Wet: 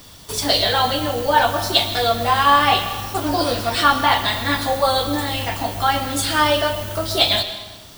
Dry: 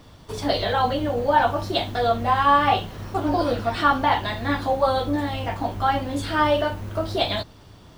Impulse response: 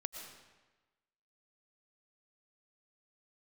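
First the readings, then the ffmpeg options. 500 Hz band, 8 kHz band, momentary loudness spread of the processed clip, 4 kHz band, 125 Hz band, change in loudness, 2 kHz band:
+1.5 dB, no reading, 8 LU, +11.0 dB, +1.0 dB, +4.5 dB, +6.0 dB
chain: -filter_complex "[0:a]crystalizer=i=6:c=0,asplit=2[s0][s1];[1:a]atrim=start_sample=2205[s2];[s1][s2]afir=irnorm=-1:irlink=0,volume=1.5[s3];[s0][s3]amix=inputs=2:normalize=0,volume=0.473"

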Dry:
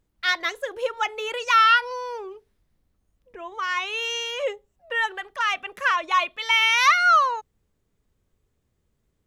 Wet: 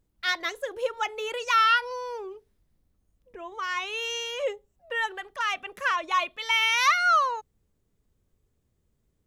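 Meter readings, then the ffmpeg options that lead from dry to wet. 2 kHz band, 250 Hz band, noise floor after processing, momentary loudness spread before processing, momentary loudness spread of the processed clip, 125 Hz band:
-4.5 dB, -1.0 dB, -74 dBFS, 16 LU, 15 LU, no reading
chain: -af "equalizer=f=1800:w=0.36:g=-4.5"

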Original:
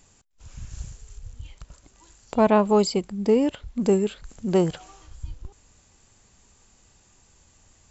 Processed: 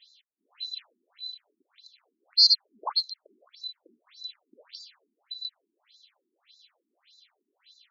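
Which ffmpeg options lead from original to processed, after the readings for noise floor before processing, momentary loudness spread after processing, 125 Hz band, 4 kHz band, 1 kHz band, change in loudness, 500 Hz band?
-59 dBFS, 24 LU, under -40 dB, +15.0 dB, -13.5 dB, -3.5 dB, -34.0 dB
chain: -af "afftfilt=real='real(if(lt(b,736),b+184*(1-2*mod(floor(b/184),2)),b),0)':imag='imag(if(lt(b,736),b+184*(1-2*mod(floor(b/184),2)),b),0)':win_size=2048:overlap=0.75,afftfilt=real='re*between(b*sr/1024,270*pow(5200/270,0.5+0.5*sin(2*PI*1.7*pts/sr))/1.41,270*pow(5200/270,0.5+0.5*sin(2*PI*1.7*pts/sr))*1.41)':imag='im*between(b*sr/1024,270*pow(5200/270,0.5+0.5*sin(2*PI*1.7*pts/sr))/1.41,270*pow(5200/270,0.5+0.5*sin(2*PI*1.7*pts/sr))*1.41)':win_size=1024:overlap=0.75"

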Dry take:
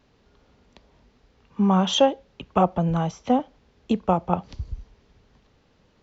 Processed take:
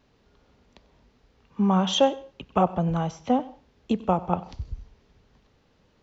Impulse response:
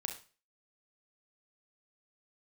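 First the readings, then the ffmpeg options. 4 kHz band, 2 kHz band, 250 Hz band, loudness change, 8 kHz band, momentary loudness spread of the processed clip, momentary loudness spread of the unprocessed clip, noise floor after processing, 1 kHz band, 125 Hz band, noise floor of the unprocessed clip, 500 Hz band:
-2.0 dB, -2.0 dB, -2.0 dB, -2.0 dB, no reading, 18 LU, 18 LU, -64 dBFS, -2.0 dB, -2.0 dB, -62 dBFS, -2.0 dB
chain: -filter_complex "[0:a]asplit=2[s0][s1];[1:a]atrim=start_sample=2205,adelay=94[s2];[s1][s2]afir=irnorm=-1:irlink=0,volume=0.126[s3];[s0][s3]amix=inputs=2:normalize=0,volume=0.794"

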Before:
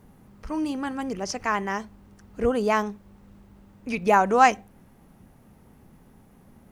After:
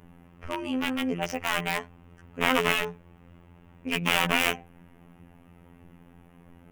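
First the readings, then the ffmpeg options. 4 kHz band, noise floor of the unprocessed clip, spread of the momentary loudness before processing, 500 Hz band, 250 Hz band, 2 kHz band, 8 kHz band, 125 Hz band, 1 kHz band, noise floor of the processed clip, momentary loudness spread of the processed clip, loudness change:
+10.0 dB, -55 dBFS, 14 LU, -6.5 dB, -3.0 dB, +2.0 dB, +1.0 dB, +1.5 dB, -8.5 dB, -55 dBFS, 14 LU, -2.5 dB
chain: -af "aeval=exprs='(mod(9.44*val(0)+1,2)-1)/9.44':c=same,afftfilt=real='hypot(re,im)*cos(PI*b)':imag='0':win_size=2048:overlap=0.75,highshelf=f=3500:t=q:w=3:g=-7,volume=1.58"

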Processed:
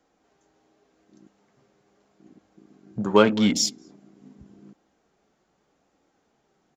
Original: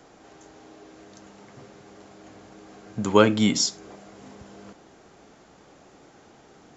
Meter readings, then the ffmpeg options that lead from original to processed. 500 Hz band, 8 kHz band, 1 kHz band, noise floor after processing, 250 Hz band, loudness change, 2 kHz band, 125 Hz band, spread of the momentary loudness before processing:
+0.5 dB, no reading, 0.0 dB, -70 dBFS, +0.5 dB, +0.5 dB, -0.5 dB, -2.0 dB, 13 LU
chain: -filter_complex "[0:a]flanger=delay=3.7:depth=1.7:regen=-53:speed=0.83:shape=sinusoidal,asplit=2[s0][s1];[s1]aecho=0:1:218:0.0891[s2];[s0][s2]amix=inputs=2:normalize=0,afwtdn=0.0126,volume=1.58"

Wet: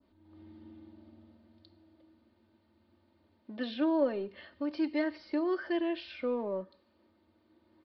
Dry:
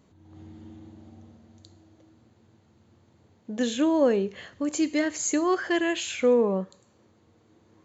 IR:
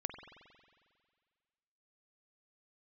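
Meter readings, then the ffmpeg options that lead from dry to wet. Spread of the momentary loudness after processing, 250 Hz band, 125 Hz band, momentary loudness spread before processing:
20 LU, -6.5 dB, no reading, 10 LU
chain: -filter_complex "[0:a]equalizer=f=120:w=4.8:g=-14.5,aecho=1:1:3.3:0.69,adynamicequalizer=threshold=0.00631:dfrequency=3000:dqfactor=0.7:tfrequency=3000:tqfactor=0.7:attack=5:release=100:ratio=0.375:range=3:mode=cutabove:tftype=bell,acrossover=split=210[s0][s1];[s0]aeval=exprs='0.0106*(abs(mod(val(0)/0.0106+3,4)-2)-1)':c=same[s2];[s2][s1]amix=inputs=2:normalize=0,aresample=11025,aresample=44100,volume=0.376"

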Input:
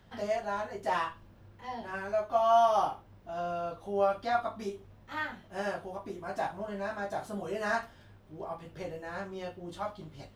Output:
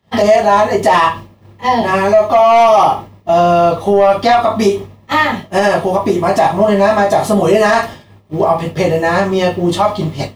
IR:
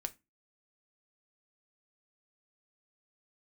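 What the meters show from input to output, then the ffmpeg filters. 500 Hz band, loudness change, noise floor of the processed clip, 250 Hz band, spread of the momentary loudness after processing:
+21.5 dB, +21.0 dB, -44 dBFS, +25.5 dB, 7 LU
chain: -filter_complex "[0:a]agate=range=0.0224:threshold=0.00631:ratio=3:detection=peak,highpass=72,asplit=2[s0][s1];[s1]acompressor=threshold=0.0112:ratio=6,volume=0.708[s2];[s0][s2]amix=inputs=2:normalize=0,asoftclip=type=tanh:threshold=0.1,asuperstop=centerf=1500:order=4:qfactor=5.2,asplit=2[s3][s4];[1:a]atrim=start_sample=2205[s5];[s4][s5]afir=irnorm=-1:irlink=0,volume=1.68[s6];[s3][s6]amix=inputs=2:normalize=0,alimiter=level_in=7.5:limit=0.891:release=50:level=0:latency=1,volume=0.891"

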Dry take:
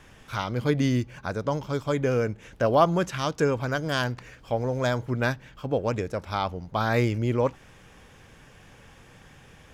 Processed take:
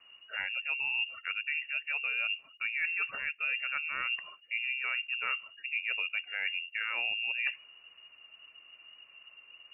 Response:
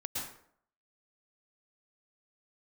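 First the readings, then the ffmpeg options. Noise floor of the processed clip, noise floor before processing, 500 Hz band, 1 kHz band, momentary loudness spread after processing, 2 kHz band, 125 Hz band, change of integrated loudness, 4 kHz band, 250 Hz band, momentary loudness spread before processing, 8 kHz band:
-60 dBFS, -53 dBFS, -31.5 dB, -16.0 dB, 21 LU, +3.0 dB, under -40 dB, -5.5 dB, +1.5 dB, under -40 dB, 8 LU, under -35 dB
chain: -af "afftdn=nr=17:nf=-39,areverse,acompressor=threshold=0.0178:ratio=8,areverse,lowpass=f=2500:t=q:w=0.5098,lowpass=f=2500:t=q:w=0.6013,lowpass=f=2500:t=q:w=0.9,lowpass=f=2500:t=q:w=2.563,afreqshift=-2900,volume=1.58"

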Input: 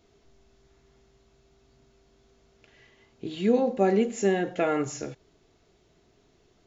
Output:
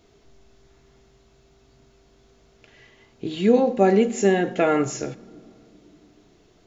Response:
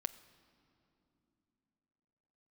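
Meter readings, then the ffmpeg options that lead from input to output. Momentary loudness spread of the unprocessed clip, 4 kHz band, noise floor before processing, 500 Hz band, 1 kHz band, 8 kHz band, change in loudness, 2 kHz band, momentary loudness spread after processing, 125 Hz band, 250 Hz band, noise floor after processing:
16 LU, +5.5 dB, -65 dBFS, +5.5 dB, +5.5 dB, no reading, +5.5 dB, +5.5 dB, 15 LU, +5.5 dB, +5.5 dB, -58 dBFS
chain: -filter_complex "[0:a]asplit=2[s0][s1];[1:a]atrim=start_sample=2205[s2];[s1][s2]afir=irnorm=-1:irlink=0,volume=1[s3];[s0][s3]amix=inputs=2:normalize=0"

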